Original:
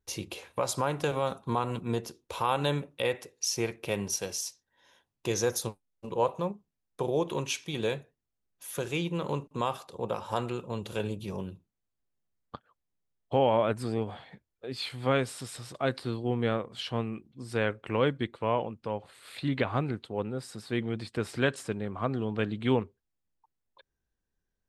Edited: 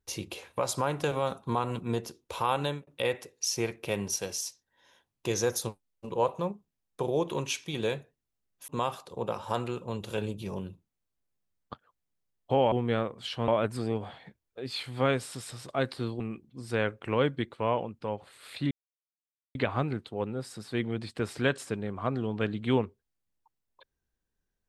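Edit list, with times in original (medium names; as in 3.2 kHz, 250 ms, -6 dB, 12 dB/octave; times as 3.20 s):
2.48–2.87 s: fade out equal-power
8.68–9.50 s: delete
16.26–17.02 s: move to 13.54 s
19.53 s: insert silence 0.84 s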